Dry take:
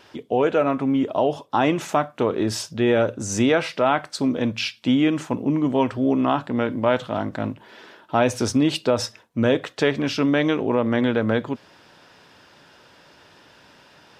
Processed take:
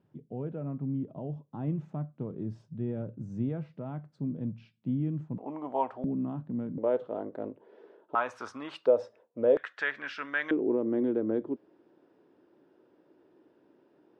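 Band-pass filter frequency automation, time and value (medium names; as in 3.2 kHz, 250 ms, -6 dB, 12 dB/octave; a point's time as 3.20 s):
band-pass filter, Q 3.7
150 Hz
from 5.38 s 780 Hz
from 6.04 s 170 Hz
from 6.78 s 440 Hz
from 8.15 s 1.2 kHz
from 8.86 s 510 Hz
from 9.57 s 1.6 kHz
from 10.51 s 340 Hz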